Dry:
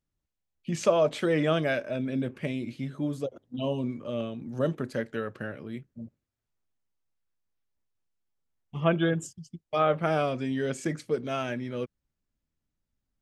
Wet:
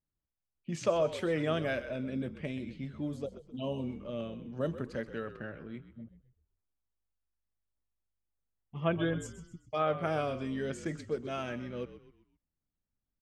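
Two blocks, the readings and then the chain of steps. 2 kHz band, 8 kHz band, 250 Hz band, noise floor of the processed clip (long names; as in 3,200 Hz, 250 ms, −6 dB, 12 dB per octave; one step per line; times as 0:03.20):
−5.5 dB, −7.0 dB, −6.0 dB, below −85 dBFS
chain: low-pass that shuts in the quiet parts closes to 1,700 Hz, open at −25 dBFS
echo with shifted repeats 129 ms, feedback 40%, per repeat −51 Hz, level −13 dB
level −6 dB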